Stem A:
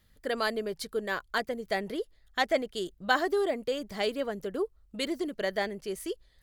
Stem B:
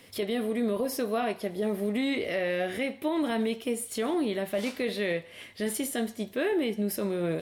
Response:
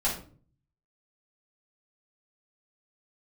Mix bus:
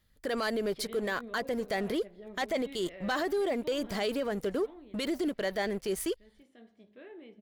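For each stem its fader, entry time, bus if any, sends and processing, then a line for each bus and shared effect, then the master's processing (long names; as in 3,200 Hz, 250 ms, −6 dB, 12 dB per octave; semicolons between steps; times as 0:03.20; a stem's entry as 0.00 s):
−1.0 dB, 0.00 s, no send, leveller curve on the samples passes 2
0:04.50 −9 dB → 0:05.15 −21.5 dB, 0.60 s, no send, low-pass filter 3,300 Hz 12 dB per octave; hum removal 52.3 Hz, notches 33; automatic ducking −8 dB, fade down 1.45 s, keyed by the first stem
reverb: not used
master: brickwall limiter −24 dBFS, peak gain reduction 11.5 dB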